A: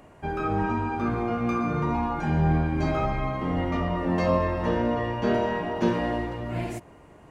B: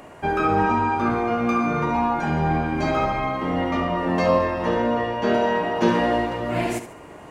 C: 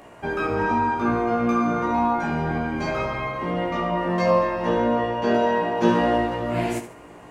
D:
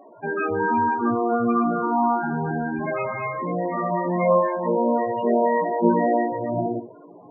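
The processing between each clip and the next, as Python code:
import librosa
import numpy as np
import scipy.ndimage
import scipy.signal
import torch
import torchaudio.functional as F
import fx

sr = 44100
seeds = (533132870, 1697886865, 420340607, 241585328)

y1 = fx.low_shelf(x, sr, hz=180.0, db=-11.0)
y1 = fx.rider(y1, sr, range_db=10, speed_s=2.0)
y1 = fx.echo_feedback(y1, sr, ms=72, feedback_pct=34, wet_db=-11)
y1 = F.gain(torch.from_numpy(y1), 6.0).numpy()
y2 = fx.doubler(y1, sr, ms=17.0, db=-2.5)
y2 = F.gain(torch.from_numpy(y2), -4.0).numpy()
y3 = fx.highpass(y2, sr, hz=120.0, slope=6)
y3 = fx.env_lowpass(y3, sr, base_hz=2500.0, full_db=-20.0)
y3 = fx.spec_topn(y3, sr, count=16)
y3 = F.gain(torch.from_numpy(y3), 1.5).numpy()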